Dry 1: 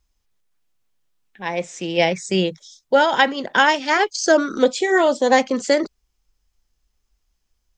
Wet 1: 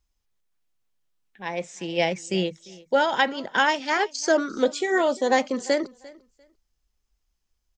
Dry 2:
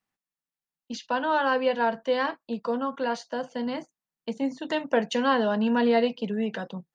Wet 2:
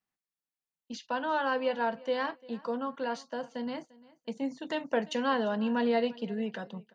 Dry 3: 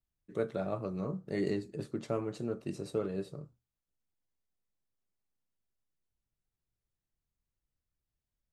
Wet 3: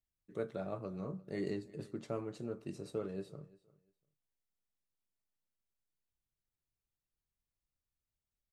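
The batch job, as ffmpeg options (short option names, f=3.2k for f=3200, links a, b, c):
-af "aecho=1:1:347|694:0.0794|0.0159,volume=-5.5dB"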